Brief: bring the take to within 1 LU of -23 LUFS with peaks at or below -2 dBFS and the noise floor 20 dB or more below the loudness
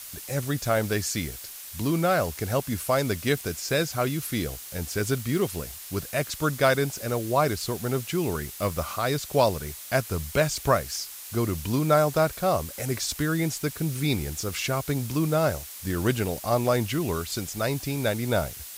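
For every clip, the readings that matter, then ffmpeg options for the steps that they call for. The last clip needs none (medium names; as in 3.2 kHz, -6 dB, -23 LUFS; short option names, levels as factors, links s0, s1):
noise floor -41 dBFS; noise floor target -47 dBFS; loudness -26.5 LUFS; peak level -7.5 dBFS; loudness target -23.0 LUFS
-> -af "afftdn=nr=6:nf=-41"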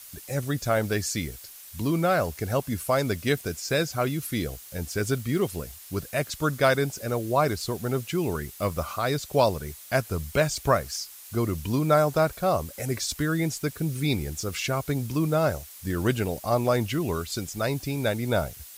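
noise floor -46 dBFS; noise floor target -47 dBFS
-> -af "afftdn=nr=6:nf=-46"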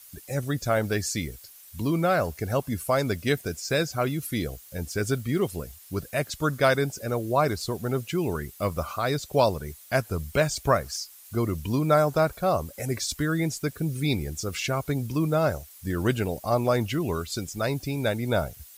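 noise floor -49 dBFS; loudness -27.0 LUFS; peak level -7.5 dBFS; loudness target -23.0 LUFS
-> -af "volume=1.58"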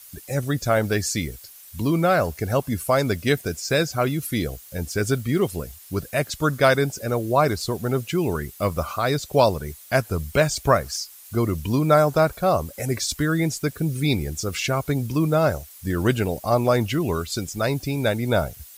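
loudness -23.0 LUFS; peak level -4.0 dBFS; noise floor -45 dBFS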